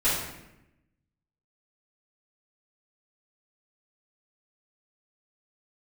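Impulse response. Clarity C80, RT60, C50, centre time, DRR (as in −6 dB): 4.0 dB, 0.90 s, 1.0 dB, 63 ms, −13.5 dB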